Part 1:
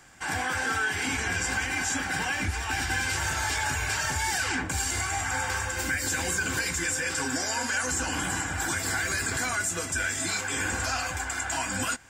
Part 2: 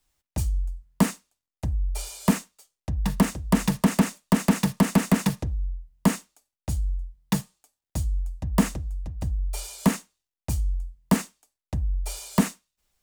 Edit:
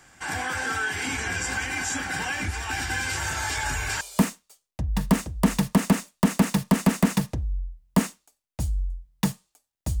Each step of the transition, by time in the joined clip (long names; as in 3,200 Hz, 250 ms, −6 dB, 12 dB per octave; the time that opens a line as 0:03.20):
part 1
0:03.57: mix in part 2 from 0:01.66 0.44 s −10.5 dB
0:04.01: continue with part 2 from 0:02.10